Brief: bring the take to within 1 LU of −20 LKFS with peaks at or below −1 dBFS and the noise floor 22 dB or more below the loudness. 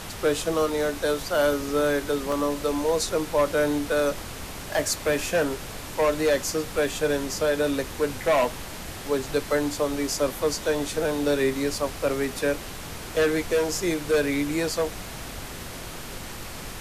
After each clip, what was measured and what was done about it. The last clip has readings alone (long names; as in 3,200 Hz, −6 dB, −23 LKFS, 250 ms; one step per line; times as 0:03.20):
number of dropouts 1; longest dropout 2.1 ms; background noise floor −37 dBFS; target noise floor −48 dBFS; integrated loudness −25.5 LKFS; sample peak −12.0 dBFS; target loudness −20.0 LKFS
→ repair the gap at 0:02.32, 2.1 ms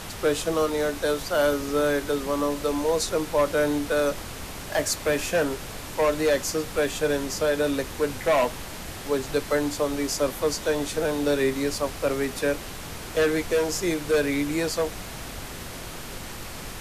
number of dropouts 0; background noise floor −37 dBFS; target noise floor −48 dBFS
→ noise reduction from a noise print 11 dB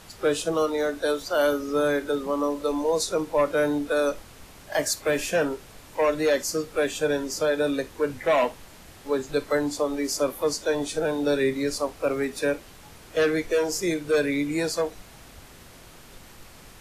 background noise floor −48 dBFS; integrated loudness −25.5 LKFS; sample peak −12.5 dBFS; target loudness −20.0 LKFS
→ level +5.5 dB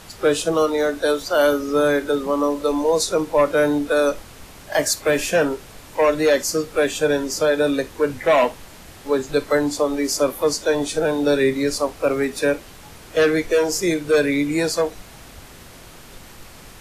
integrated loudness −20.0 LKFS; sample peak −7.0 dBFS; background noise floor −43 dBFS